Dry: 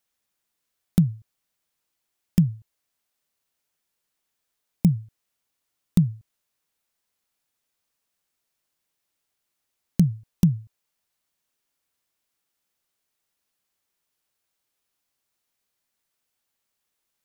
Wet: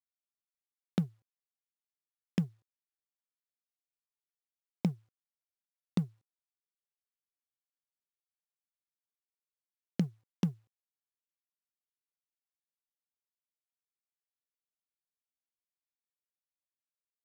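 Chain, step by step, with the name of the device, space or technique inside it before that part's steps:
phone line with mismatched companding (band-pass filter 330–3,500 Hz; mu-law and A-law mismatch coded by A)

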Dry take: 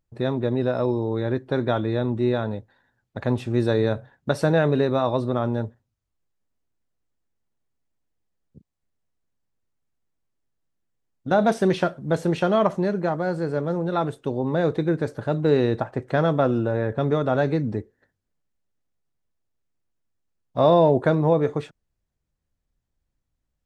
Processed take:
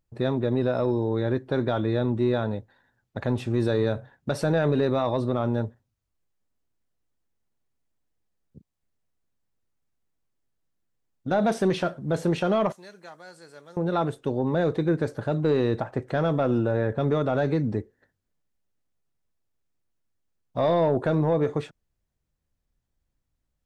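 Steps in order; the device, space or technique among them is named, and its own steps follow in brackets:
0:12.72–0:13.77: first-order pre-emphasis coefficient 0.97
soft clipper into limiter (soft clipping −9 dBFS, distortion −21 dB; brickwall limiter −14.5 dBFS, peak gain reduction 4.5 dB)

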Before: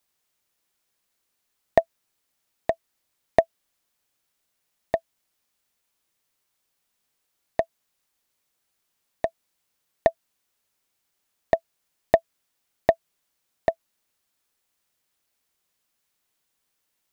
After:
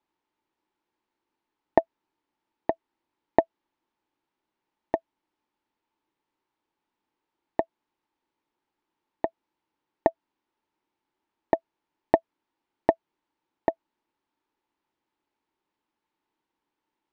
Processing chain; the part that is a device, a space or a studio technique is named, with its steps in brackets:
inside a cardboard box (low-pass filter 3,100 Hz 12 dB per octave; hollow resonant body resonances 320/880 Hz, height 15 dB, ringing for 25 ms)
level −5.5 dB

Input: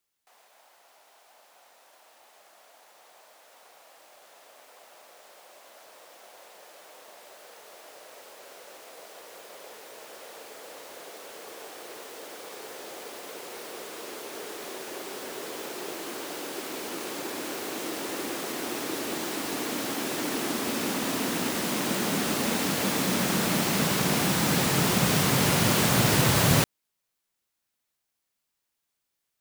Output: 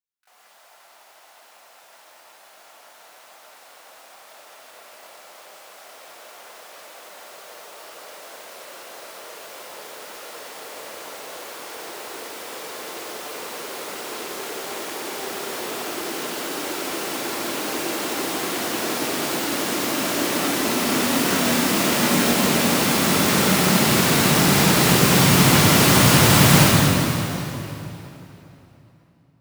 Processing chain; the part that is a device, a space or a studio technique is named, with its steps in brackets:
0:20.86–0:22.32: double-tracking delay 25 ms −6 dB
noise gate with hold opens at −53 dBFS
parametric band 450 Hz −2 dB 1.5 octaves
shimmer-style reverb (pitch-shifted copies added +12 semitones −8 dB; convolution reverb RT60 3.2 s, pre-delay 45 ms, DRR −4.5 dB)
level +2.5 dB

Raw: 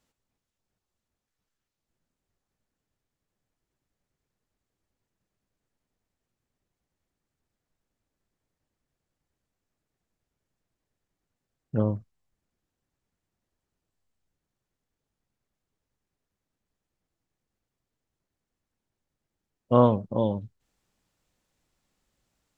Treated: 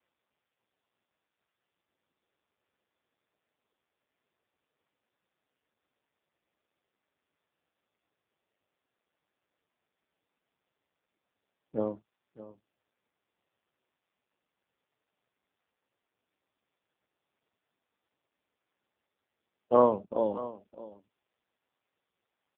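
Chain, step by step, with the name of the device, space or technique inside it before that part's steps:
satellite phone (band-pass filter 340–3,100 Hz; single-tap delay 614 ms −16 dB; AMR narrowband 5.15 kbit/s 8,000 Hz)

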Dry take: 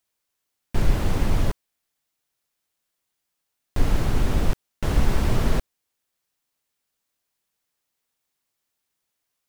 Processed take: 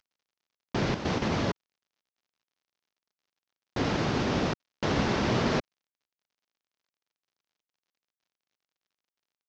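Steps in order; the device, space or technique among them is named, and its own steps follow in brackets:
0:00.94–0:01.41: noise gate −20 dBFS, range −8 dB
early wireless headset (high-pass filter 170 Hz 12 dB per octave; variable-slope delta modulation 32 kbit/s)
level +2.5 dB

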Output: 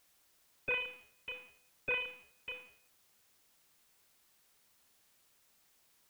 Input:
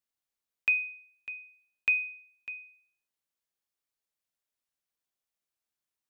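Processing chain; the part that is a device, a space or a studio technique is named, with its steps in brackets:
army field radio (band-pass filter 330–3,100 Hz; variable-slope delta modulation 16 kbit/s; white noise bed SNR 24 dB)
level −3.5 dB

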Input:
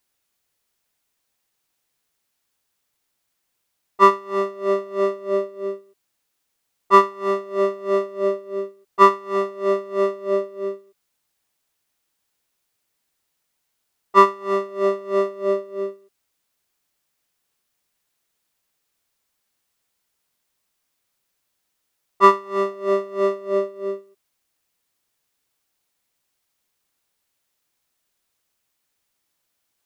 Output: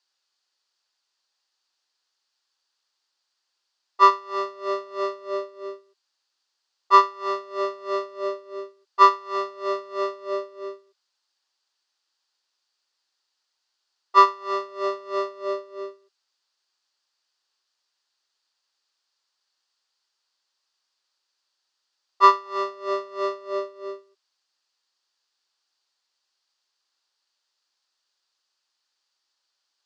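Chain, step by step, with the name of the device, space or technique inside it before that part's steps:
phone speaker on a table (loudspeaker in its box 420–6,500 Hz, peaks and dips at 460 Hz −9 dB, 660 Hz −7 dB, 2,200 Hz −7 dB, 4,600 Hz +9 dB)

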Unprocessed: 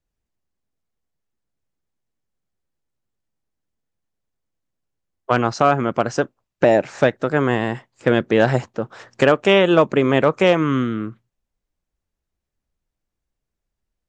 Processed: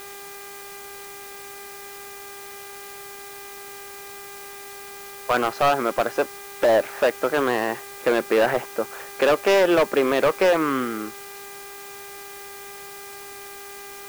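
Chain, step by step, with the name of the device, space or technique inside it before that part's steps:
aircraft radio (band-pass filter 400–2,600 Hz; hard clipping −15.5 dBFS, distortion −9 dB; hum with harmonics 400 Hz, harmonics 6, −44 dBFS −3 dB per octave; white noise bed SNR 17 dB)
level +2 dB

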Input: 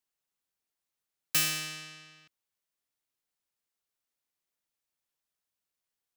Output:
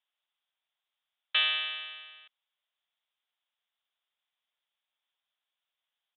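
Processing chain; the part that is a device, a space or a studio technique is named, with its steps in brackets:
musical greeting card (downsampling to 8,000 Hz; high-pass filter 620 Hz 24 dB per octave; parametric band 3,400 Hz +9.5 dB 0.43 octaves)
level +3 dB

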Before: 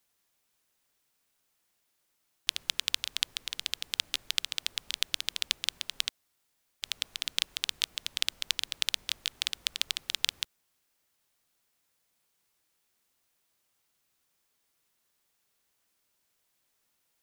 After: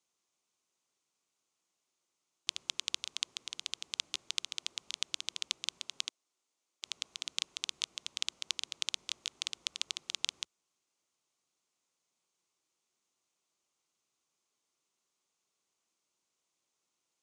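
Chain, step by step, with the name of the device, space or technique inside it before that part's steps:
car door speaker (loudspeaker in its box 95–8,800 Hz, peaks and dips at 98 Hz −9 dB, 360 Hz +5 dB, 1,100 Hz +4 dB, 1,700 Hz −8 dB, 6,500 Hz +6 dB)
0:06.05–0:06.85: Chebyshev high-pass filter 280 Hz, order 2
level −6 dB

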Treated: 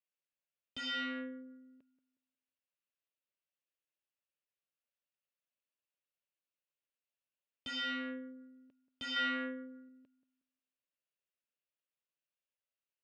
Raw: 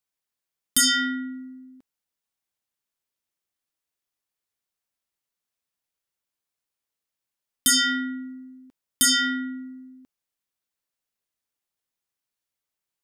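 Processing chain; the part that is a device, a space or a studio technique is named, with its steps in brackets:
analogue delay pedal into a guitar amplifier (bucket-brigade delay 181 ms, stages 2,048, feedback 31%, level −15 dB; tube saturation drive 29 dB, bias 0.7; loudspeaker in its box 88–4,100 Hz, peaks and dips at 560 Hz +10 dB, 800 Hz −6 dB, 1,600 Hz +3 dB, 2,700 Hz +9 dB)
0:09.16–0:09.89: parametric band 1,200 Hz +5.5 dB 2.7 octaves
level −8 dB

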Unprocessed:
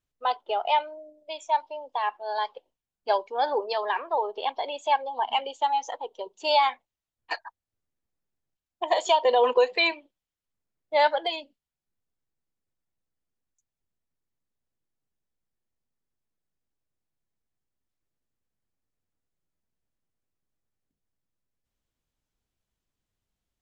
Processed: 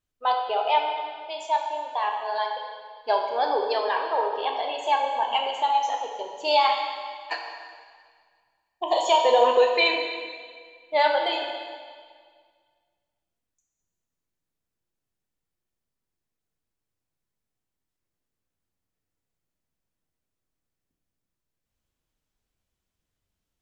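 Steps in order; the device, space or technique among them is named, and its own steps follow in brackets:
0:07.35–0:09.07: flat-topped bell 1,800 Hz −10.5 dB 1 octave
stairwell (convolution reverb RT60 1.8 s, pre-delay 9 ms, DRR 1 dB)

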